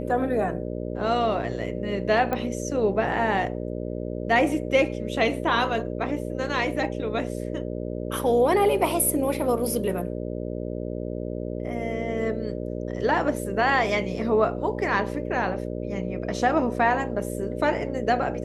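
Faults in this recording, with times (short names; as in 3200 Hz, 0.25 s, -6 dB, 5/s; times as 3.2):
buzz 60 Hz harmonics 10 -31 dBFS
2.33 pop -14 dBFS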